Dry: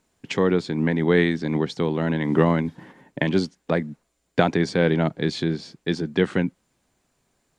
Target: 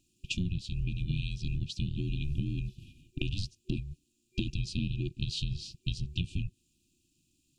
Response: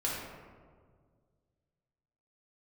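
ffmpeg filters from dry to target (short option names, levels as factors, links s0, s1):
-af "aeval=exprs='val(0)*sin(2*PI*290*n/s)':c=same,afftfilt=real='re*(1-between(b*sr/4096,370,2400))':imag='im*(1-between(b*sr/4096,370,2400))':win_size=4096:overlap=0.75,acompressor=threshold=0.0316:ratio=6,volume=1.26"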